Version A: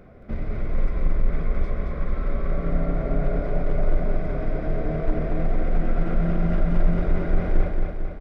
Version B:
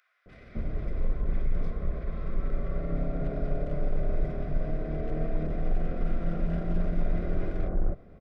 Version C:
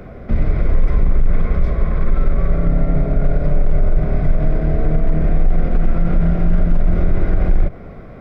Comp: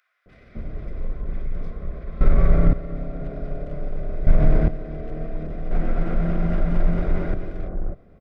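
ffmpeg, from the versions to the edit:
-filter_complex "[2:a]asplit=2[s0][s1];[1:a]asplit=4[s2][s3][s4][s5];[s2]atrim=end=2.212[s6];[s0]atrim=start=2.208:end=2.732[s7];[s3]atrim=start=2.728:end=4.272[s8];[s1]atrim=start=4.268:end=4.682[s9];[s4]atrim=start=4.678:end=5.712[s10];[0:a]atrim=start=5.708:end=7.342[s11];[s5]atrim=start=7.338[s12];[s6][s7]acrossfade=d=0.004:c1=hsin:c2=hsin[s13];[s13][s8]acrossfade=d=0.004:c1=hsin:c2=hsin[s14];[s14][s9]acrossfade=d=0.004:c1=hsin:c2=hsin[s15];[s15][s10]acrossfade=d=0.004:c1=hsin:c2=hsin[s16];[s16][s11]acrossfade=d=0.004:c1=hsin:c2=hsin[s17];[s17][s12]acrossfade=d=0.004:c1=hsin:c2=hsin"

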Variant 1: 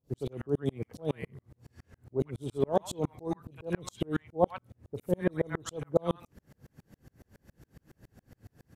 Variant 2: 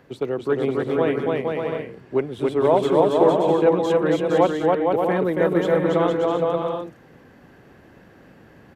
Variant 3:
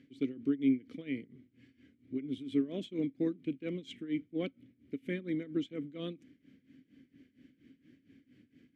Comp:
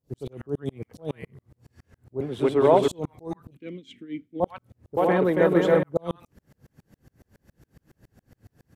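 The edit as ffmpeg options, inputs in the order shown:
-filter_complex "[1:a]asplit=2[s0][s1];[0:a]asplit=4[s2][s3][s4][s5];[s2]atrim=end=2.212[s6];[s0]atrim=start=2.208:end=2.882[s7];[s3]atrim=start=2.878:end=3.572[s8];[2:a]atrim=start=3.568:end=4.402[s9];[s4]atrim=start=4.398:end=4.972[s10];[s1]atrim=start=4.968:end=5.832[s11];[s5]atrim=start=5.828[s12];[s6][s7]acrossfade=d=0.004:c1=hsin:c2=hsin[s13];[s13][s8]acrossfade=d=0.004:c1=hsin:c2=hsin[s14];[s14][s9]acrossfade=d=0.004:c1=hsin:c2=hsin[s15];[s15][s10]acrossfade=d=0.004:c1=hsin:c2=hsin[s16];[s16][s11]acrossfade=d=0.004:c1=hsin:c2=hsin[s17];[s17][s12]acrossfade=d=0.004:c1=hsin:c2=hsin"

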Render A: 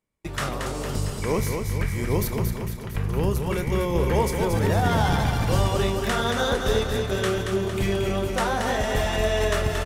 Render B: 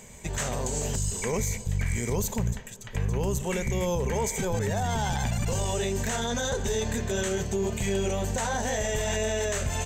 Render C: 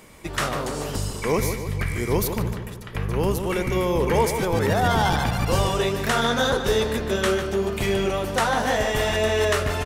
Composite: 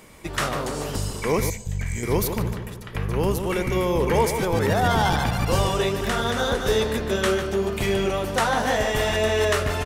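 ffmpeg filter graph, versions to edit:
-filter_complex "[2:a]asplit=3[s0][s1][s2];[s0]atrim=end=1.502[s3];[1:a]atrim=start=1.498:end=2.032[s4];[s1]atrim=start=2.028:end=6.012[s5];[0:a]atrim=start=6.008:end=6.672[s6];[s2]atrim=start=6.668[s7];[s3][s4]acrossfade=d=0.004:c1=hsin:c2=hsin[s8];[s8][s5]acrossfade=d=0.004:c1=hsin:c2=hsin[s9];[s9][s6]acrossfade=d=0.004:c1=hsin:c2=hsin[s10];[s10][s7]acrossfade=d=0.004:c1=hsin:c2=hsin"

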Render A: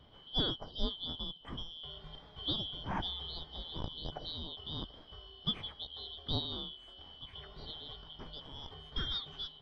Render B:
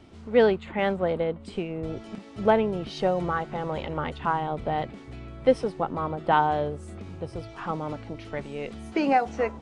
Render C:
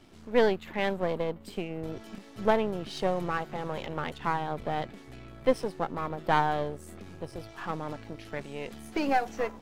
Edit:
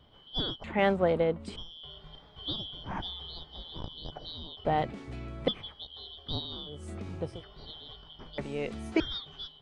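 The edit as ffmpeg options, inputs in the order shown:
-filter_complex "[1:a]asplit=4[s0][s1][s2][s3];[0:a]asplit=5[s4][s5][s6][s7][s8];[s4]atrim=end=0.642[s9];[s0]atrim=start=0.638:end=1.562[s10];[s5]atrim=start=1.558:end=4.652[s11];[s1]atrim=start=4.648:end=5.482[s12];[s6]atrim=start=5.478:end=6.89[s13];[s2]atrim=start=6.65:end=7.46[s14];[s7]atrim=start=7.22:end=8.382[s15];[s3]atrim=start=8.378:end=9.002[s16];[s8]atrim=start=8.998[s17];[s9][s10]acrossfade=d=0.004:c1=hsin:c2=hsin[s18];[s18][s11]acrossfade=d=0.004:c1=hsin:c2=hsin[s19];[s19][s12]acrossfade=d=0.004:c1=hsin:c2=hsin[s20];[s20][s13]acrossfade=d=0.004:c1=hsin:c2=hsin[s21];[s21][s14]acrossfade=d=0.24:c1=tri:c2=tri[s22];[s22][s15]acrossfade=d=0.24:c1=tri:c2=tri[s23];[s23][s16]acrossfade=d=0.004:c1=hsin:c2=hsin[s24];[s24][s17]acrossfade=d=0.004:c1=hsin:c2=hsin"

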